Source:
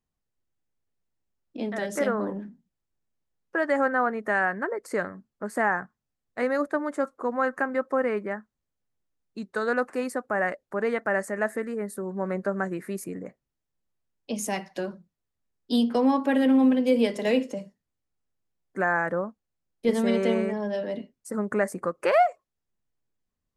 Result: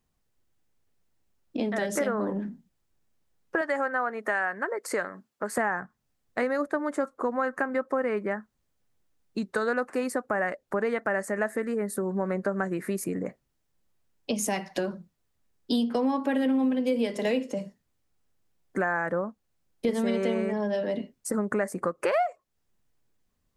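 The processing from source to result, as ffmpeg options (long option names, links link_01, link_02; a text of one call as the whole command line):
ffmpeg -i in.wav -filter_complex "[0:a]asettb=1/sr,asplit=3[link_01][link_02][link_03];[link_01]atrim=end=3.614[link_04];[link_02]atrim=start=3.61:end=5.58,asetpts=PTS-STARTPTS,afade=type=in:duration=0.004:curve=qsin,afade=type=out:start_time=1.966:duration=0.004:curve=qsin,highpass=frequency=550:poles=1[link_05];[link_03]atrim=start=5.576[link_06];[link_04][link_05]acrossfade=duration=0.004:curve1=hsin:curve2=qsin[link_07];[link_07][link_06]acrossfade=duration=0.004:curve1=qsin:curve2=hsin,acompressor=threshold=-36dB:ratio=3,volume=8.5dB" out.wav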